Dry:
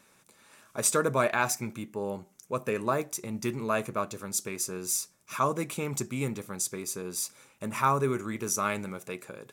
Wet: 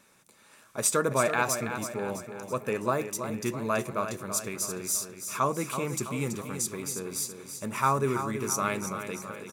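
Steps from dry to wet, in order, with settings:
repeating echo 329 ms, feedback 52%, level −9 dB

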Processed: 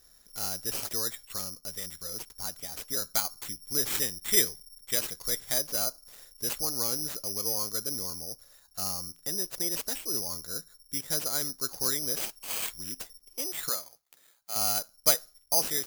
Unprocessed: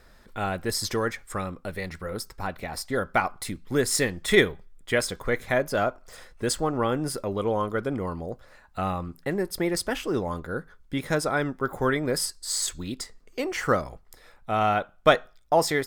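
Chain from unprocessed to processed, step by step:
0:13.69–0:14.56: high-pass filter 860 Hz 6 dB per octave
bad sample-rate conversion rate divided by 8×, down none, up zero stuff
level −14 dB

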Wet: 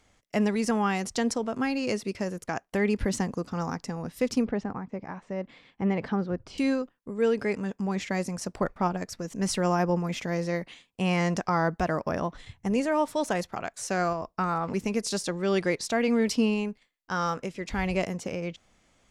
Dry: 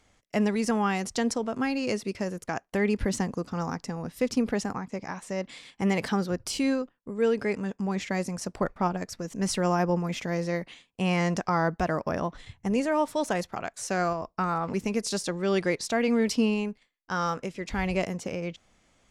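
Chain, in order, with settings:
0:04.45–0:06.58: head-to-tape spacing loss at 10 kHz 31 dB

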